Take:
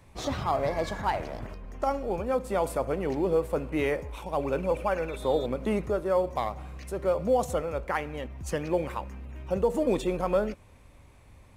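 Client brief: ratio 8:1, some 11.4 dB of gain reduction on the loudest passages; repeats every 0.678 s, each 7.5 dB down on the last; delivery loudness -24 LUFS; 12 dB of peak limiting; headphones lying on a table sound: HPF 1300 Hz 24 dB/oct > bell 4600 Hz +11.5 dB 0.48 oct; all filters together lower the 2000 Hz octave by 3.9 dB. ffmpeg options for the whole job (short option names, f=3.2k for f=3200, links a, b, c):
-af "equalizer=f=2k:t=o:g=-5,acompressor=threshold=-32dB:ratio=8,alimiter=level_in=10dB:limit=-24dB:level=0:latency=1,volume=-10dB,highpass=f=1.3k:w=0.5412,highpass=f=1.3k:w=1.3066,equalizer=f=4.6k:t=o:w=0.48:g=11.5,aecho=1:1:678|1356|2034|2712|3390:0.422|0.177|0.0744|0.0312|0.0131,volume=27.5dB"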